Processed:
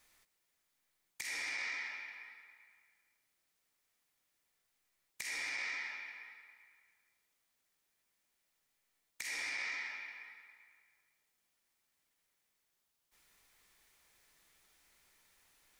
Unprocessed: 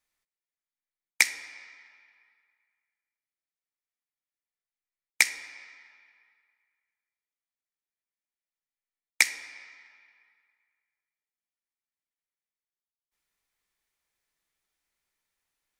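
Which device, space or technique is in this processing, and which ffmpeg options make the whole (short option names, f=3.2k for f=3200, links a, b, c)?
de-esser from a sidechain: -filter_complex "[0:a]asplit=2[a][b];[b]highpass=f=4.1k:p=1,apad=whole_len=696744[c];[a][c]sidechaincompress=threshold=-54dB:ratio=16:attack=0.83:release=22,volume=13.5dB"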